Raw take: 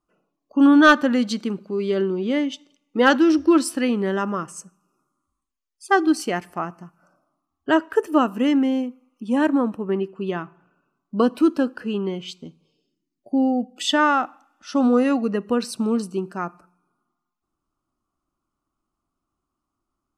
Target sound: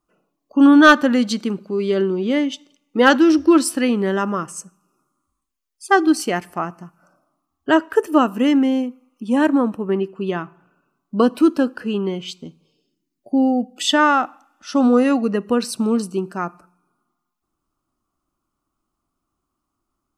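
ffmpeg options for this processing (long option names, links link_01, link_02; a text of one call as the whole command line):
ffmpeg -i in.wav -af "highshelf=frequency=8400:gain=4.5,volume=3dB" out.wav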